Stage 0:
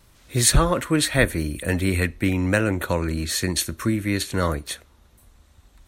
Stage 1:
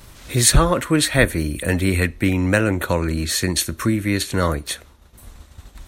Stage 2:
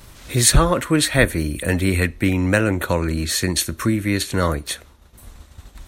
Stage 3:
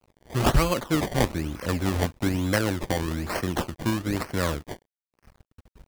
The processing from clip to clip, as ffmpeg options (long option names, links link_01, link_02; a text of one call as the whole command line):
ffmpeg -i in.wav -filter_complex "[0:a]agate=range=-33dB:threshold=-46dB:ratio=3:detection=peak,asplit=2[link_01][link_02];[link_02]acompressor=mode=upward:threshold=-21dB:ratio=2.5,volume=1dB[link_03];[link_01][link_03]amix=inputs=2:normalize=0,volume=-3.5dB" out.wav
ffmpeg -i in.wav -af anull out.wav
ffmpeg -i in.wav -af "acrusher=samples=23:mix=1:aa=0.000001:lfo=1:lforange=23:lforate=1.1,aeval=exprs='sgn(val(0))*max(abs(val(0))-0.0106,0)':channel_layout=same,volume=-6dB" out.wav